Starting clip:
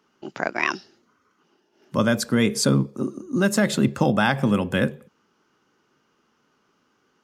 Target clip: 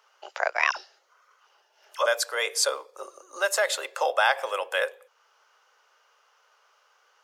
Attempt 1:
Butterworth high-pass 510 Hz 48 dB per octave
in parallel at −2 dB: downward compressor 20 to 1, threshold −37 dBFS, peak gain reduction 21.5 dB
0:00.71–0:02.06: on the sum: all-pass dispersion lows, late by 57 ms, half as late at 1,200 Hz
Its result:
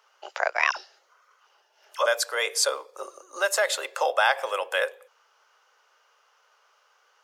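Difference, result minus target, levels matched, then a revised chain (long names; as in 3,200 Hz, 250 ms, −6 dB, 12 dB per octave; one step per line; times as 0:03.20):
downward compressor: peak gain reduction −9.5 dB
Butterworth high-pass 510 Hz 48 dB per octave
in parallel at −2 dB: downward compressor 20 to 1, threshold −47 dBFS, peak gain reduction 31 dB
0:00.71–0:02.06: on the sum: all-pass dispersion lows, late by 57 ms, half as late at 1,200 Hz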